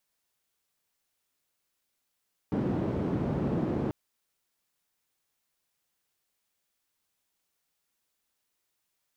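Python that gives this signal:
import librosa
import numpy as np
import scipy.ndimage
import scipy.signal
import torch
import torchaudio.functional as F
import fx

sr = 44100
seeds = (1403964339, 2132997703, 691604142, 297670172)

y = fx.band_noise(sr, seeds[0], length_s=1.39, low_hz=110.0, high_hz=280.0, level_db=-29.5)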